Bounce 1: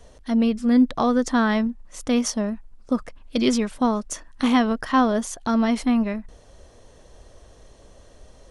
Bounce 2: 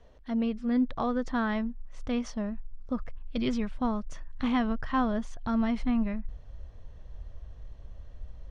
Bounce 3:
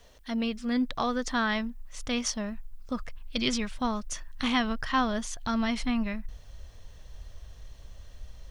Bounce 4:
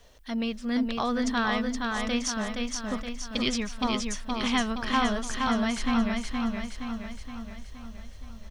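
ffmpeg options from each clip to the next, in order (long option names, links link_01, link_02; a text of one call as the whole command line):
ffmpeg -i in.wav -af "lowpass=3300,asubboost=boost=6.5:cutoff=130,volume=-8dB" out.wav
ffmpeg -i in.wav -af "crystalizer=i=9:c=0,volume=-2dB" out.wav
ffmpeg -i in.wav -af "aecho=1:1:470|940|1410|1880|2350|2820|3290:0.668|0.361|0.195|0.105|0.0568|0.0307|0.0166" out.wav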